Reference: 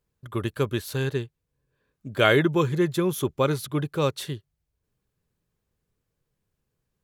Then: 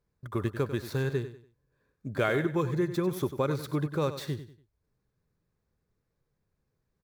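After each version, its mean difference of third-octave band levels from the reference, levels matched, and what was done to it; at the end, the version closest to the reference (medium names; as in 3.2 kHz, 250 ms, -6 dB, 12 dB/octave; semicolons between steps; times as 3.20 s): 5.0 dB: median filter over 5 samples; peaking EQ 3 kHz -10.5 dB 0.4 oct; compression 2.5:1, threshold -27 dBFS, peak gain reduction 9 dB; on a send: feedback delay 96 ms, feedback 31%, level -12 dB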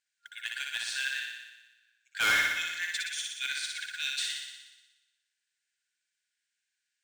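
18.0 dB: FFT band-pass 1.4–9.3 kHz; overload inside the chain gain 26.5 dB; modulation noise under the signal 24 dB; flutter echo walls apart 10.3 m, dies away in 1.1 s; trim +2.5 dB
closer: first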